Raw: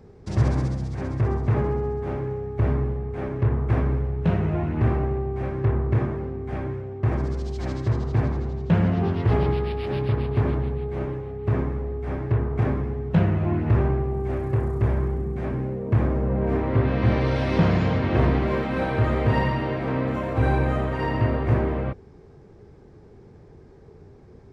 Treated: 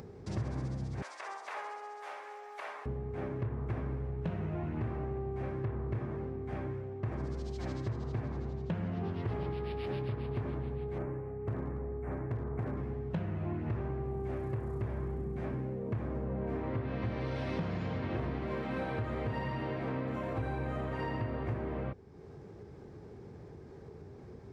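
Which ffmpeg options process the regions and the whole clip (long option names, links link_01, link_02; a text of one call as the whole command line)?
ffmpeg -i in.wav -filter_complex "[0:a]asettb=1/sr,asplit=3[link_01][link_02][link_03];[link_01]atrim=end=1.024[link_04];[link_02]atrim=start=1.02:end=2.86,asetpts=PTS-STARTPTS,afade=type=in:duration=0.004:curve=qsin,afade=type=out:start_time=1.836:duration=0.004:curve=qsin,highpass=frequency=690:width=0.5412,highpass=frequency=690:width=1.3066,highshelf=frequency=2700:gain=11.5[link_05];[link_03]atrim=start=2.856[link_06];[link_04][link_05]acrossfade=duration=0.004:curve1=hsin:curve2=qsin[link_07];[link_07][link_06]acrossfade=duration=0.004:curve1=qsin:curve2=hsin,asettb=1/sr,asplit=3[link_08][link_09][link_10];[link_08]atrim=end=10.984[link_11];[link_09]atrim=start=10.98:end=12.77,asetpts=PTS-STARTPTS,afade=type=in:duration=0.004:curve=qsin,afade=type=out:start_time=1.786:duration=0.004:curve=qsin,asuperstop=centerf=4100:order=4:qfactor=0.75,aeval=exprs='clip(val(0),-1,0.1)':channel_layout=same[link_12];[link_10]atrim=start=12.766[link_13];[link_11][link_12]acrossfade=duration=0.004:curve1=hsin:curve2=qsin[link_14];[link_14][link_13]acrossfade=duration=0.004:curve1=qsin:curve2=hsin,acompressor=mode=upward:threshold=-33dB:ratio=2.5,highpass=67,acompressor=threshold=-25dB:ratio=6,volume=-7dB" out.wav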